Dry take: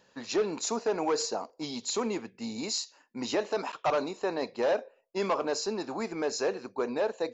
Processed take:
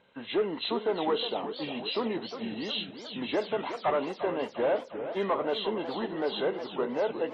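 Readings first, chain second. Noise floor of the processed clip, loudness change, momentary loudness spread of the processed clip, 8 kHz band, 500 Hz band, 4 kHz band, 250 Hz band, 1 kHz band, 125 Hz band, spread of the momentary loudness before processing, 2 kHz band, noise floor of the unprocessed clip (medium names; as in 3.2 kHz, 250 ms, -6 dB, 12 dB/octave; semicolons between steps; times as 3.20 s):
-47 dBFS, +0.5 dB, 5 LU, no reading, +0.5 dB, +2.5 dB, +1.0 dB, +0.5 dB, +1.5 dB, 7 LU, +0.5 dB, -66 dBFS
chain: knee-point frequency compression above 1.3 kHz 1.5:1; modulated delay 360 ms, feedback 62%, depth 212 cents, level -10 dB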